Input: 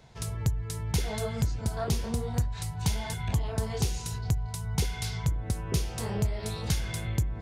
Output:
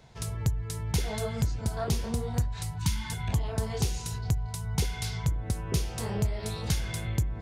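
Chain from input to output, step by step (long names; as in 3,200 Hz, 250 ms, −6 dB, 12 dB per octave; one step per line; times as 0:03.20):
gain on a spectral selection 0:02.78–0:03.12, 380–870 Hz −23 dB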